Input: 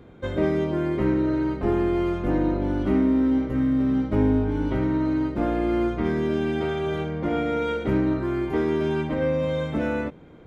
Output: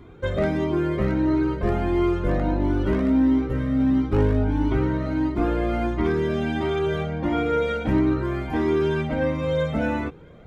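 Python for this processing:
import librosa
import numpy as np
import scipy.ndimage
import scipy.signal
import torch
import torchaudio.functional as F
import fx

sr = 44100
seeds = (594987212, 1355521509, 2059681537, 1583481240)

y = 10.0 ** (-13.5 / 20.0) * (np.abs((x / 10.0 ** (-13.5 / 20.0) + 3.0) % 4.0 - 2.0) - 1.0)
y = fx.comb_cascade(y, sr, direction='rising', hz=1.5)
y = y * 10.0 ** (6.5 / 20.0)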